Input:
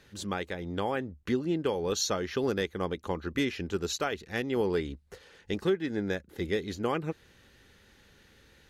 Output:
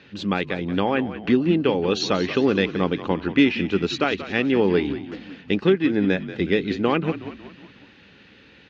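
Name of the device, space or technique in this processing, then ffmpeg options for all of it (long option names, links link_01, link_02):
frequency-shifting delay pedal into a guitar cabinet: -filter_complex "[0:a]asplit=6[link_01][link_02][link_03][link_04][link_05][link_06];[link_02]adelay=183,afreqshift=-49,volume=-13dB[link_07];[link_03]adelay=366,afreqshift=-98,volume=-18.8dB[link_08];[link_04]adelay=549,afreqshift=-147,volume=-24.7dB[link_09];[link_05]adelay=732,afreqshift=-196,volume=-30.5dB[link_10];[link_06]adelay=915,afreqshift=-245,volume=-36.4dB[link_11];[link_01][link_07][link_08][link_09][link_10][link_11]amix=inputs=6:normalize=0,highpass=100,equalizer=frequency=190:width_type=q:width=4:gain=5,equalizer=frequency=280:width_type=q:width=4:gain=6,equalizer=frequency=2600:width_type=q:width=4:gain=8,lowpass=frequency=4500:width=0.5412,lowpass=frequency=4500:width=1.3066,volume=7.5dB"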